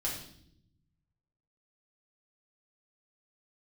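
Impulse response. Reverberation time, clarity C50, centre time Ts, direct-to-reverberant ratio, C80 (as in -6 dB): no single decay rate, 5.0 dB, 35 ms, -5.5 dB, 8.0 dB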